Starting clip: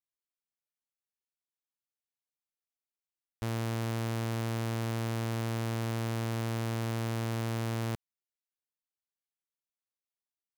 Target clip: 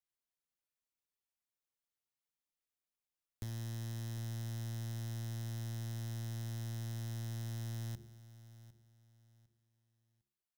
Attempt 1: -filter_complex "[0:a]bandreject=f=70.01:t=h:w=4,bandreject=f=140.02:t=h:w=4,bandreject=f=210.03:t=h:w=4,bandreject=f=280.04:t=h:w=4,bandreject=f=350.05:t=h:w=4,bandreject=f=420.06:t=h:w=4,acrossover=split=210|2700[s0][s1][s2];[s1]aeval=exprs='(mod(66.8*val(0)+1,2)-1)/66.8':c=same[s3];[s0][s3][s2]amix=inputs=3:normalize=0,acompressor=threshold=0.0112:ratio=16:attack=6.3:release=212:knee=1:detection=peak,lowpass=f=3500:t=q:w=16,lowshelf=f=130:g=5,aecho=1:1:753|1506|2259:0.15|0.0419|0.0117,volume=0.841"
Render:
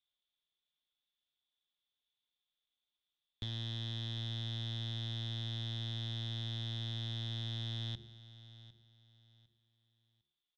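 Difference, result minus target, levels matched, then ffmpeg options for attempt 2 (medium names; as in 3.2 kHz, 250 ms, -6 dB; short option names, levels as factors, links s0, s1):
4 kHz band +12.5 dB
-filter_complex "[0:a]bandreject=f=70.01:t=h:w=4,bandreject=f=140.02:t=h:w=4,bandreject=f=210.03:t=h:w=4,bandreject=f=280.04:t=h:w=4,bandreject=f=350.05:t=h:w=4,bandreject=f=420.06:t=h:w=4,acrossover=split=210|2700[s0][s1][s2];[s1]aeval=exprs='(mod(66.8*val(0)+1,2)-1)/66.8':c=same[s3];[s0][s3][s2]amix=inputs=3:normalize=0,acompressor=threshold=0.0112:ratio=16:attack=6.3:release=212:knee=1:detection=peak,lowshelf=f=130:g=5,aecho=1:1:753|1506|2259:0.15|0.0419|0.0117,volume=0.841"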